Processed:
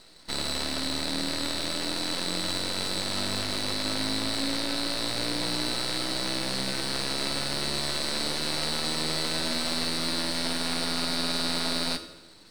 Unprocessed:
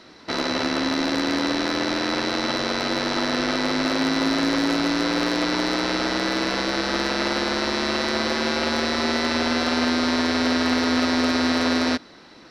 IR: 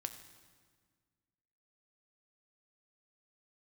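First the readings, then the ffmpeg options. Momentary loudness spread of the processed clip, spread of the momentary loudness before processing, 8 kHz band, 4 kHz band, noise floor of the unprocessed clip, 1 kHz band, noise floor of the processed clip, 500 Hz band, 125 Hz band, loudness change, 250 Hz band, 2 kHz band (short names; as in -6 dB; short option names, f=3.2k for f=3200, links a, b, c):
2 LU, 3 LU, +1.5 dB, -1.5 dB, -47 dBFS, -10.0 dB, -49 dBFS, -10.0 dB, -2.5 dB, -6.0 dB, -11.5 dB, -9.5 dB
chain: -filter_complex "[0:a]lowpass=f=4.5k:t=q:w=4.7,aeval=exprs='max(val(0),0)':c=same[a];[1:a]atrim=start_sample=2205,asetrate=74970,aresample=44100[b];[a][b]afir=irnorm=-1:irlink=0"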